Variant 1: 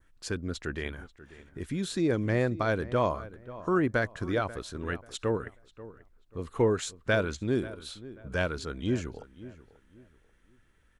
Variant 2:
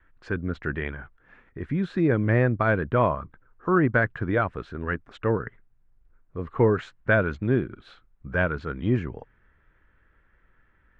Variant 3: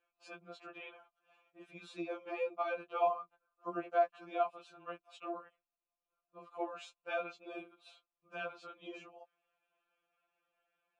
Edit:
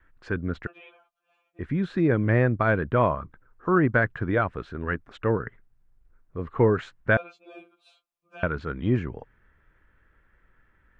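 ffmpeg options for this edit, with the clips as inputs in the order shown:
-filter_complex "[2:a]asplit=2[s0][s1];[1:a]asplit=3[s2][s3][s4];[s2]atrim=end=0.672[s5];[s0]atrim=start=0.668:end=1.592[s6];[s3]atrim=start=1.588:end=7.172[s7];[s1]atrim=start=7.168:end=8.432[s8];[s4]atrim=start=8.428[s9];[s5][s6]acrossfade=d=0.004:c1=hsin:c2=hsin[s10];[s10][s7]acrossfade=d=0.004:c1=hsin:c2=hsin[s11];[s11][s8]acrossfade=d=0.004:c1=hsin:c2=hsin[s12];[s12][s9]acrossfade=d=0.004:c1=hsin:c2=hsin"

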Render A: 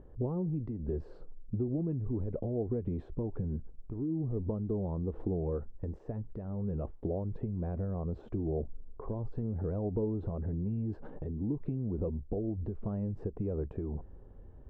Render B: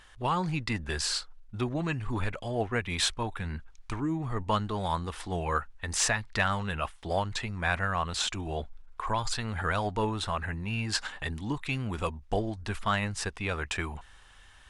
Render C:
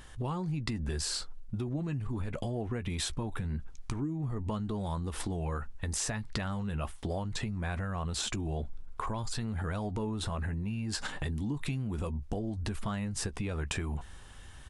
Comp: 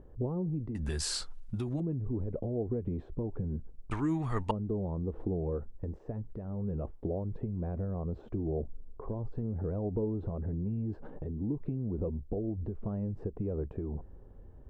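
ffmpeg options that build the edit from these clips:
-filter_complex "[0:a]asplit=3[s0][s1][s2];[s0]atrim=end=0.752[s3];[2:a]atrim=start=0.748:end=1.802[s4];[s1]atrim=start=1.798:end=3.912[s5];[1:a]atrim=start=3.908:end=4.512[s6];[s2]atrim=start=4.508[s7];[s3][s4]acrossfade=d=0.004:c1=hsin:c2=hsin[s8];[s8][s5]acrossfade=d=0.004:c1=hsin:c2=hsin[s9];[s9][s6]acrossfade=d=0.004:c1=hsin:c2=hsin[s10];[s10][s7]acrossfade=d=0.004:c1=hsin:c2=hsin"

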